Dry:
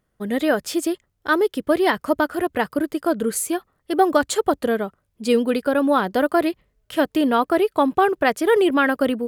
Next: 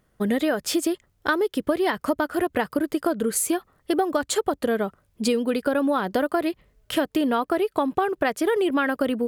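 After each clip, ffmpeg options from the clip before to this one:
-af "acompressor=threshold=-26dB:ratio=6,volume=6dB"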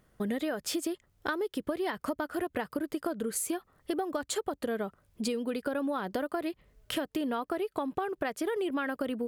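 -af "acompressor=threshold=-37dB:ratio=2"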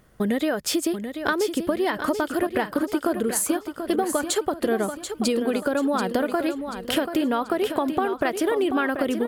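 -af "aecho=1:1:735|1470|2205|2940:0.376|0.15|0.0601|0.0241,volume=8.5dB"

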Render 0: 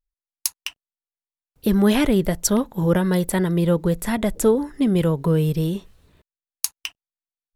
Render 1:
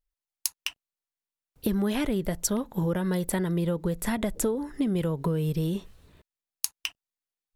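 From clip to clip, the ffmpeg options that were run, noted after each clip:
-af "acompressor=threshold=-24dB:ratio=6"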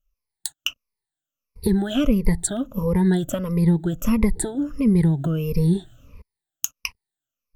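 -af "afftfilt=real='re*pow(10,22/40*sin(2*PI*(0.87*log(max(b,1)*sr/1024/100)/log(2)-(-1.5)*(pts-256)/sr)))':imag='im*pow(10,22/40*sin(2*PI*(0.87*log(max(b,1)*sr/1024/100)/log(2)-(-1.5)*(pts-256)/sr)))':win_size=1024:overlap=0.75,lowshelf=f=160:g=12,volume=-2dB"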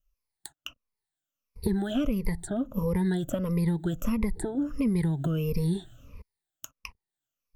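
-filter_complex "[0:a]acrossover=split=800|1700[a][b][c];[a]acompressor=threshold=-23dB:ratio=4[d];[b]acompressor=threshold=-44dB:ratio=4[e];[c]acompressor=threshold=-42dB:ratio=4[f];[d][e][f]amix=inputs=3:normalize=0,volume=-1.5dB"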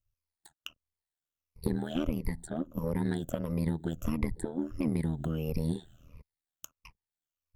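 -af "tremolo=f=80:d=0.857,aeval=exprs='0.2*(cos(1*acos(clip(val(0)/0.2,-1,1)))-cos(1*PI/2))+0.00794*(cos(7*acos(clip(val(0)/0.2,-1,1)))-cos(7*PI/2))':c=same"

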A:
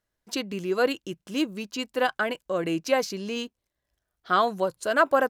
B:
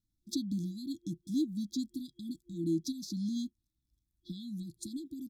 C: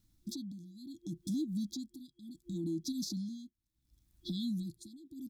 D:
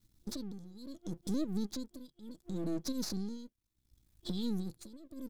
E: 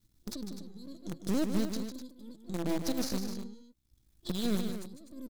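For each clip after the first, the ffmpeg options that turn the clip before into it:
-af "acompressor=threshold=-27dB:ratio=5,afftfilt=real='re*(1-between(b*sr/4096,350,3300))':imag='im*(1-between(b*sr/4096,350,3300))':win_size=4096:overlap=0.75,lowshelf=f=490:g=8.5,volume=-5.5dB"
-af "acompressor=threshold=-42dB:ratio=6,alimiter=level_in=17.5dB:limit=-24dB:level=0:latency=1:release=60,volume=-17.5dB,tremolo=f=0.7:d=0.88,volume=13dB"
-af "aeval=exprs='if(lt(val(0),0),0.251*val(0),val(0))':c=same,volume=4dB"
-filter_complex "[0:a]asplit=2[a][b];[b]acrusher=bits=4:mix=0:aa=0.000001,volume=-6.5dB[c];[a][c]amix=inputs=2:normalize=0,aecho=1:1:151.6|250.7:0.398|0.316"

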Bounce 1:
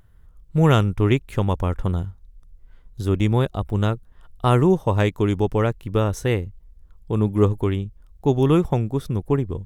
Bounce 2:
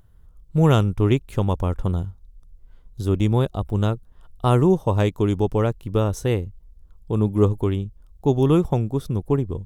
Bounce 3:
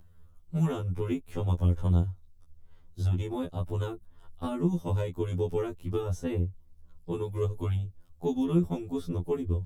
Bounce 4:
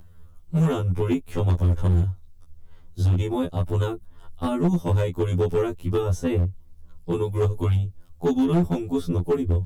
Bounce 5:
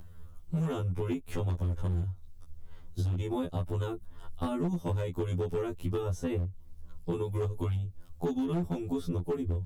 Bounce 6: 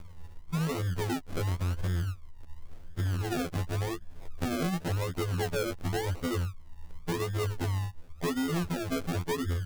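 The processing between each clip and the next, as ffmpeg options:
-af "equalizer=f=1.9k:t=o:w=1:g=-6.5"
-filter_complex "[0:a]acrossover=split=370|1800|8000[a][b][c][d];[a]acompressor=threshold=-22dB:ratio=4[e];[b]acompressor=threshold=-36dB:ratio=4[f];[c]acompressor=threshold=-49dB:ratio=4[g];[d]acompressor=threshold=-59dB:ratio=4[h];[e][f][g][h]amix=inputs=4:normalize=0,afftfilt=real='re*2*eq(mod(b,4),0)':imag='im*2*eq(mod(b,4),0)':win_size=2048:overlap=0.75"
-af "asoftclip=type=hard:threshold=-23.5dB,volume=8dB"
-af "acompressor=threshold=-29dB:ratio=6"
-filter_complex "[0:a]asplit=2[a][b];[b]aeval=exprs='0.0237*(abs(mod(val(0)/0.0237+3,4)-2)-1)':c=same,volume=-11dB[c];[a][c]amix=inputs=2:normalize=0,acrusher=samples=37:mix=1:aa=0.000001:lfo=1:lforange=22.2:lforate=0.92"

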